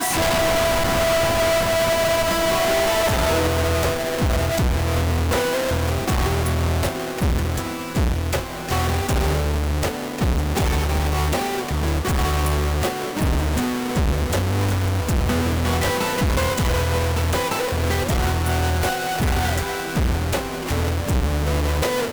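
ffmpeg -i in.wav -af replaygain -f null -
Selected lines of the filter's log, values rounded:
track_gain = +3.6 dB
track_peak = 0.115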